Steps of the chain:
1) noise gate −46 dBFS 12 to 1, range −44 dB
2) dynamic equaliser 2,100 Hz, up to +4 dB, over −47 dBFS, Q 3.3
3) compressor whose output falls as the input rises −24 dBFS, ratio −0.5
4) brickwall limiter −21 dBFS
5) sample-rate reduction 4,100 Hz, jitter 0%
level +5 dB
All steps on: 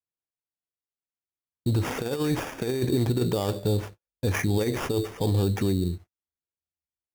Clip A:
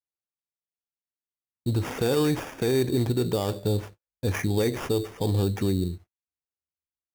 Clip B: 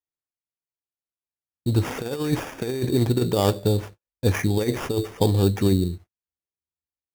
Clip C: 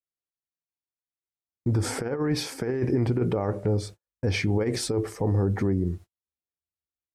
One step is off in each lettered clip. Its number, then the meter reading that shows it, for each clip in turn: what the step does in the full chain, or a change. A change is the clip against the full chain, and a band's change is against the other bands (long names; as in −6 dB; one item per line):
3, change in momentary loudness spread +1 LU
4, average gain reduction 1.5 dB
5, distortion level −8 dB